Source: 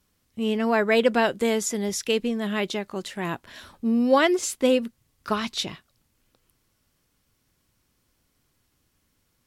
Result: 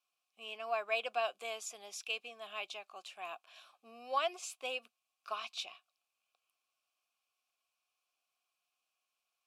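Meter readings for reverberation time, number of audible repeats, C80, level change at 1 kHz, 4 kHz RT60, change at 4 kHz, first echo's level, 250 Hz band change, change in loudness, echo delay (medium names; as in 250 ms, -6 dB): no reverb, no echo, no reverb, -10.5 dB, no reverb, -11.0 dB, no echo, -38.5 dB, -15.0 dB, no echo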